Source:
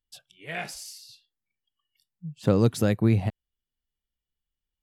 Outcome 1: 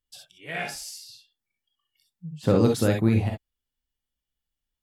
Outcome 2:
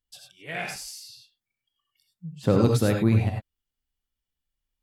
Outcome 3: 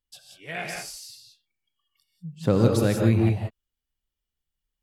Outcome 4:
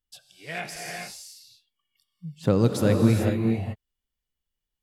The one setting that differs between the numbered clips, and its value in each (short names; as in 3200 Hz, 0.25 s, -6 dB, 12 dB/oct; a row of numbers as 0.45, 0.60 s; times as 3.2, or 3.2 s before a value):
non-linear reverb, gate: 80, 120, 210, 460 ms